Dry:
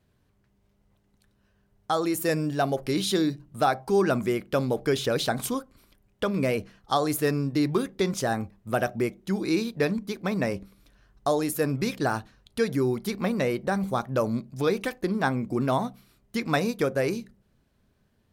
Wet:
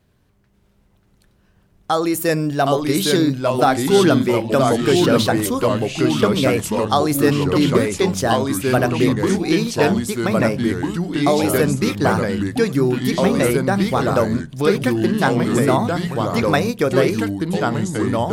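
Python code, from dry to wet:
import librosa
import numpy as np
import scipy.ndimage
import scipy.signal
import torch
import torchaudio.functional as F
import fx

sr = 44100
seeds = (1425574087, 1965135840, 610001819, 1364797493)

y = fx.echo_pitch(x, sr, ms=534, semitones=-2, count=3, db_per_echo=-3.0)
y = F.gain(torch.from_numpy(y), 7.0).numpy()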